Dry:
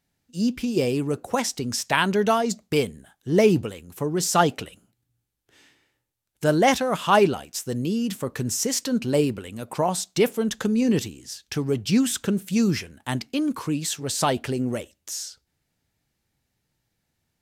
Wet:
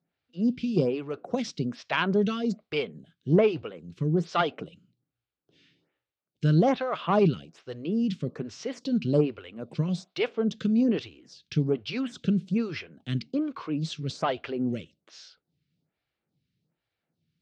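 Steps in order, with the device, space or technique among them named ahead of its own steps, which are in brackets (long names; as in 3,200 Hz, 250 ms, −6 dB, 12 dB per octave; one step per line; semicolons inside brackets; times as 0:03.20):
vibe pedal into a guitar amplifier (phaser with staggered stages 1.2 Hz; tube saturation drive 11 dB, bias 0.3; loudspeaker in its box 91–4,400 Hz, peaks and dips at 160 Hz +9 dB, 890 Hz −7 dB, 1,800 Hz −5 dB)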